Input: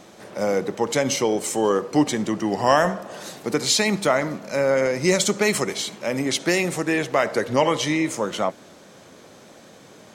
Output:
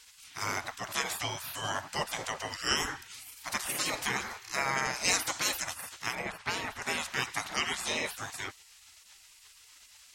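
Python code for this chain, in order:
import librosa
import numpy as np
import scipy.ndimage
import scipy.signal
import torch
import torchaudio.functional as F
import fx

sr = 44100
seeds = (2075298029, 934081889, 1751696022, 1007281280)

y = fx.spec_gate(x, sr, threshold_db=-20, keep='weak')
y = fx.bass_treble(y, sr, bass_db=3, treble_db=-15, at=(6.15, 6.82))
y = y * librosa.db_to_amplitude(2.0)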